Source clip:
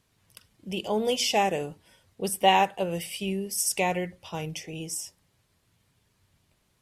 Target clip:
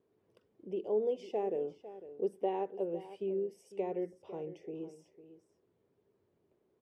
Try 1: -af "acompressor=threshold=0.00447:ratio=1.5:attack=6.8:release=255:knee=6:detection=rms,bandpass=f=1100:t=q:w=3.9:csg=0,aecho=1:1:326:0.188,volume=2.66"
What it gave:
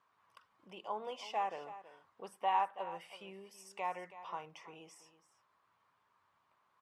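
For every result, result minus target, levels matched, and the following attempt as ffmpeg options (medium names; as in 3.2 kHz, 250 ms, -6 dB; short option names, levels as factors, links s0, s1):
1 kHz band +10.5 dB; echo 176 ms early
-af "acompressor=threshold=0.00447:ratio=1.5:attack=6.8:release=255:knee=6:detection=rms,bandpass=f=400:t=q:w=3.9:csg=0,aecho=1:1:326:0.188,volume=2.66"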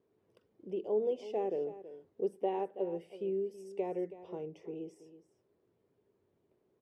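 echo 176 ms early
-af "acompressor=threshold=0.00447:ratio=1.5:attack=6.8:release=255:knee=6:detection=rms,bandpass=f=400:t=q:w=3.9:csg=0,aecho=1:1:502:0.188,volume=2.66"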